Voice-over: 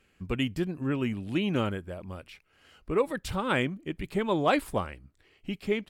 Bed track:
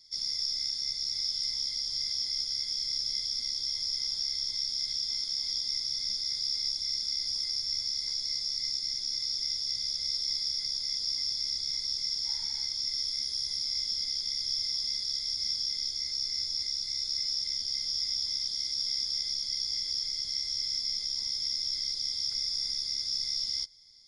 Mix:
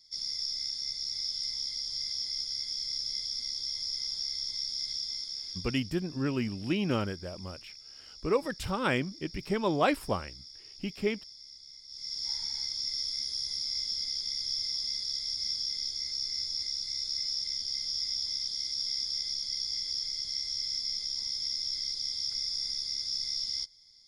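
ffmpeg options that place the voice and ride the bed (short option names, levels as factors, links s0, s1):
-filter_complex "[0:a]adelay=5350,volume=0.841[s0];[1:a]volume=4.73,afade=t=out:st=4.95:d=0.99:silence=0.177828,afade=t=in:st=11.88:d=0.41:silence=0.158489[s1];[s0][s1]amix=inputs=2:normalize=0"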